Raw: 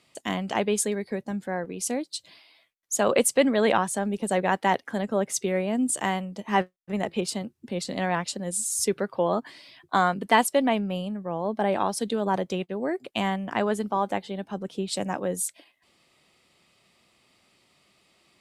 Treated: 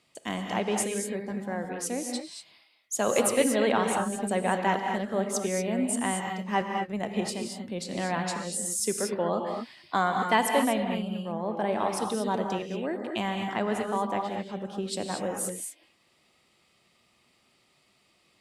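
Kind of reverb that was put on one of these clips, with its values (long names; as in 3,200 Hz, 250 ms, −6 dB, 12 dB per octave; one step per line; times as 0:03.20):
reverb whose tail is shaped and stops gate 260 ms rising, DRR 2.5 dB
level −4 dB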